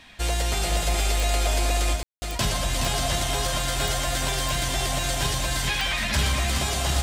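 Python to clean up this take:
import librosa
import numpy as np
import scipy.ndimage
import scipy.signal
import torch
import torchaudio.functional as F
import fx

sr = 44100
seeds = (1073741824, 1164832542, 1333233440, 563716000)

y = fx.fix_declick_ar(x, sr, threshold=10.0)
y = fx.fix_ambience(y, sr, seeds[0], print_start_s=0.0, print_end_s=0.5, start_s=2.03, end_s=2.22)
y = fx.fix_echo_inverse(y, sr, delay_ms=421, level_db=-5.5)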